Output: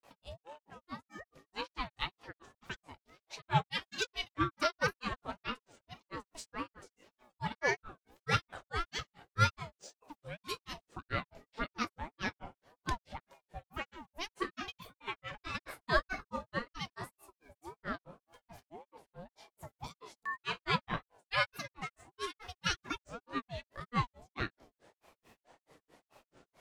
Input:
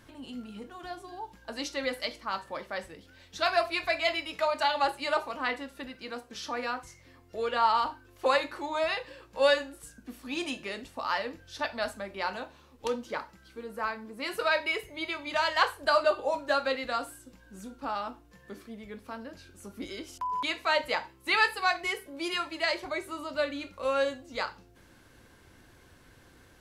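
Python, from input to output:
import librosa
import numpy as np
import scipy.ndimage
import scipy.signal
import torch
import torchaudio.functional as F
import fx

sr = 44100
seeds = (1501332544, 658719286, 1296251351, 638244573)

y = fx.granulator(x, sr, seeds[0], grain_ms=162.0, per_s=4.6, spray_ms=29.0, spread_st=7)
y = fx.ring_lfo(y, sr, carrier_hz=540.0, swing_pct=40, hz=1.8)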